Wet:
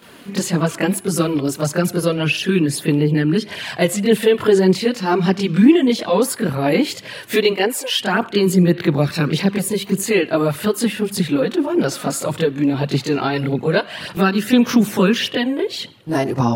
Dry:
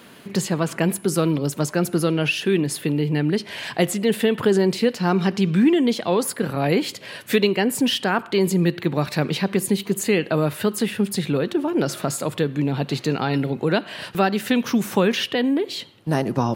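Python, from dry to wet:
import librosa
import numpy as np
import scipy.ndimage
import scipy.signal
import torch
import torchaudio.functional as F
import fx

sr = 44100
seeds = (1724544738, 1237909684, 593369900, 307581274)

y = fx.highpass(x, sr, hz=fx.line((7.49, 210.0), (7.97, 670.0)), slope=24, at=(7.49, 7.97), fade=0.02)
y = fx.chorus_voices(y, sr, voices=2, hz=0.85, base_ms=23, depth_ms=2.1, mix_pct=70)
y = y * 10.0 ** (6.0 / 20.0)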